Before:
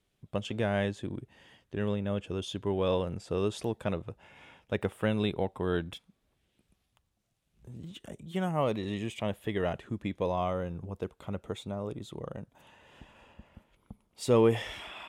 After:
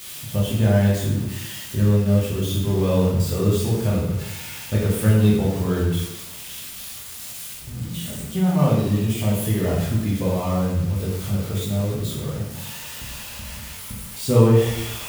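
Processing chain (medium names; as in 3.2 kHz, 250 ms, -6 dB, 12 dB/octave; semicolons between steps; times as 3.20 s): zero-crossing glitches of -24 dBFS; tone controls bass +14 dB, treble -5 dB; plate-style reverb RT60 0.96 s, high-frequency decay 0.8×, DRR -6 dB; trim -3 dB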